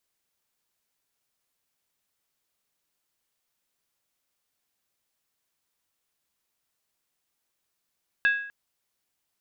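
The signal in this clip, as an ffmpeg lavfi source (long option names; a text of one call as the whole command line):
ffmpeg -f lavfi -i "aevalsrc='0.15*pow(10,-3*t/0.62)*sin(2*PI*1650*t)+0.0501*pow(10,-3*t/0.491)*sin(2*PI*2630.1*t)+0.0168*pow(10,-3*t/0.424)*sin(2*PI*3524.4*t)+0.00562*pow(10,-3*t/0.409)*sin(2*PI*3788.4*t)+0.00188*pow(10,-3*t/0.381)*sin(2*PI*4377.4*t)':duration=0.25:sample_rate=44100" out.wav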